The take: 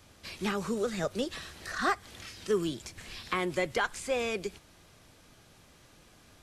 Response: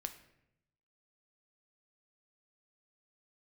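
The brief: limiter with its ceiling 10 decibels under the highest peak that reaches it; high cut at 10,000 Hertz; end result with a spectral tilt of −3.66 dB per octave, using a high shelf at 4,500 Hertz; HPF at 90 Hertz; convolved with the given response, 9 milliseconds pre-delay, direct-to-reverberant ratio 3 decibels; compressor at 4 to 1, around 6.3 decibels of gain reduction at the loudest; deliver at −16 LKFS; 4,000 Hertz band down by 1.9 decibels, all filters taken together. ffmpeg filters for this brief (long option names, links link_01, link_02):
-filter_complex "[0:a]highpass=90,lowpass=10000,equalizer=frequency=4000:width_type=o:gain=-4.5,highshelf=frequency=4500:gain=4,acompressor=threshold=-31dB:ratio=4,alimiter=level_in=3.5dB:limit=-24dB:level=0:latency=1,volume=-3.5dB,asplit=2[link_01][link_02];[1:a]atrim=start_sample=2205,adelay=9[link_03];[link_02][link_03]afir=irnorm=-1:irlink=0,volume=-1dB[link_04];[link_01][link_04]amix=inputs=2:normalize=0,volume=21dB"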